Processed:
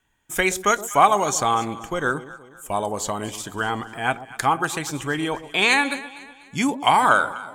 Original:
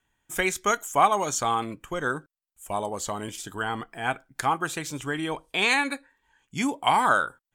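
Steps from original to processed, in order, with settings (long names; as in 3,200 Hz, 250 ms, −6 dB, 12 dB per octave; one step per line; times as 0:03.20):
delay that swaps between a low-pass and a high-pass 123 ms, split 860 Hz, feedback 63%, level −13 dB
level +4.5 dB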